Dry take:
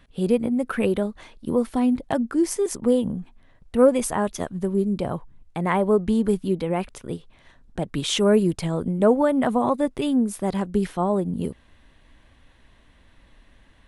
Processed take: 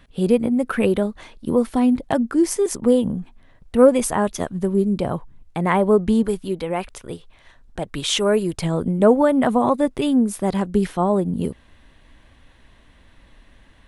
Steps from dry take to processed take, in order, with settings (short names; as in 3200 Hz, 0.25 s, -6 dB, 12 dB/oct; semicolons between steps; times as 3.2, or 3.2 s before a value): 6.23–8.58 bell 200 Hz -7.5 dB 2 oct; gain +3.5 dB